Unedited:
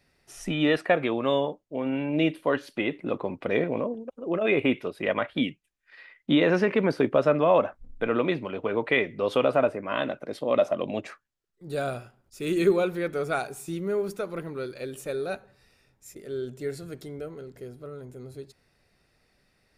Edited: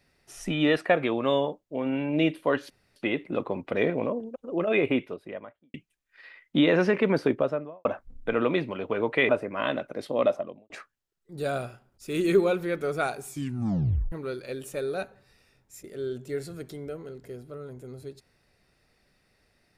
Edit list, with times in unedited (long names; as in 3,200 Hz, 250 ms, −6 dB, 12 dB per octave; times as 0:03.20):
0:02.70: splice in room tone 0.26 s
0:04.41–0:05.48: fade out and dull
0:06.92–0:07.59: fade out and dull
0:09.03–0:09.61: remove
0:10.47–0:11.02: fade out and dull
0:13.60: tape stop 0.84 s